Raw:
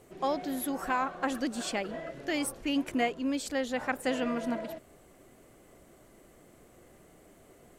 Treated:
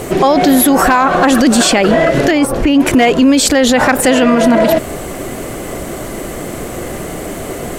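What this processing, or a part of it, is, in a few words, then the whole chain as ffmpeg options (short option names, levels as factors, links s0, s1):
loud club master: -filter_complex "[0:a]acompressor=threshold=0.0178:ratio=1.5,asoftclip=type=hard:threshold=0.0596,alimiter=level_in=56.2:limit=0.891:release=50:level=0:latency=1,asettb=1/sr,asplit=3[s0][s1][s2];[s0]atrim=end=2.314[s3];[s1]atrim=start=2.31:end=2.8,asetpts=PTS-STARTPTS,afade=t=in:d=0.004:c=qsin,afade=t=out:st=0.486:d=0.004:c=qsin,highshelf=f=2500:g=-10.5[s4];[s2]atrim=start=2.796[s5];[s3][s4]acrossfade=d=0.004:c1=hsin:c2=qsin[s6];[s6][s5]acrossfade=d=0.004:c1=qsin:c2=hsin,volume=0.891"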